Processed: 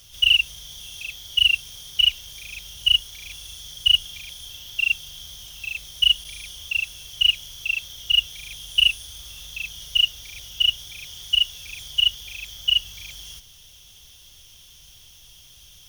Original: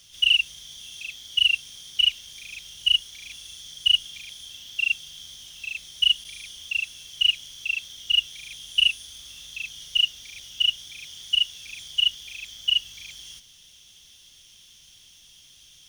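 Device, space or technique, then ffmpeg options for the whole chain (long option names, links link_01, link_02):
low shelf boost with a cut just above: -af "equalizer=frequency=250:width_type=o:width=1:gain=-7,equalizer=frequency=2000:width_type=o:width=1:gain=-6,equalizer=frequency=4000:width_type=o:width=1:gain=-5,equalizer=frequency=8000:width_type=o:width=1:gain=-8,equalizer=frequency=16000:width_type=o:width=1:gain=4,lowshelf=frequency=89:gain=6.5,equalizer=frequency=180:width_type=o:width=0.77:gain=-2,volume=8.5dB"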